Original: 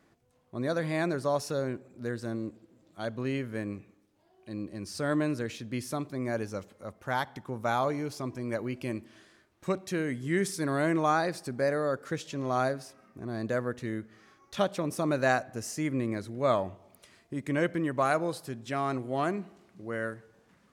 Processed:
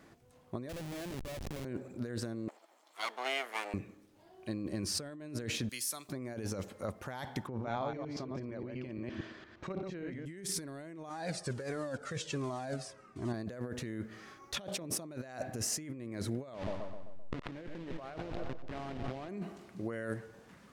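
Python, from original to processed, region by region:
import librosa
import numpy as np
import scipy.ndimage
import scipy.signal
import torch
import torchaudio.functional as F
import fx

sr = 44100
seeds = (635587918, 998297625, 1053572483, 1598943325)

y = fx.chain(x, sr, fx.peak_eq(hz=450.0, db=-11.5, octaves=0.25),
    fx.schmitt(flips_db=-32.5), at=(0.69, 1.65))
y = fx.chain(y, sr, fx.lower_of_two(delay_ms=0.93),
    fx.bessel_highpass(hz=730.0, order=4), at=(2.48, 3.74))
y = fx.chain(y, sr, fx.pre_emphasis(coefficient=0.97),
    fx.band_squash(depth_pct=40), at=(5.69, 6.09))
y = fx.chain(y, sr, fx.reverse_delay(ms=116, wet_db=-2.0),
    fx.over_compress(threshold_db=-30.0, ratio=-0.5),
    fx.air_absorb(metres=180.0), at=(7.47, 10.26))
y = fx.chain(y, sr, fx.block_float(bits=5),
    fx.cheby1_lowpass(hz=8800.0, order=3),
    fx.comb_cascade(direction='falling', hz=1.4), at=(11.09, 13.34))
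y = fx.chain(y, sr, fx.delta_hold(step_db=-28.5),
    fx.lowpass(hz=3300.0, slope=12),
    fx.echo_split(split_hz=740.0, low_ms=130, high_ms=92, feedback_pct=52, wet_db=-13.5), at=(16.54, 19.29))
y = fx.dynamic_eq(y, sr, hz=1200.0, q=1.5, threshold_db=-44.0, ratio=4.0, max_db=-6)
y = fx.over_compress(y, sr, threshold_db=-40.0, ratio=-1.0)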